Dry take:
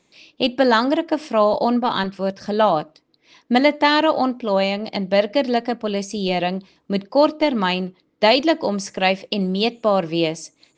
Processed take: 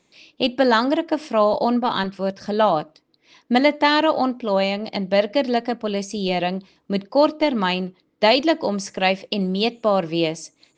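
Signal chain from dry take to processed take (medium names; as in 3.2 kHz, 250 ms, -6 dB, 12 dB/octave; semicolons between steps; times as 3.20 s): trim -1 dB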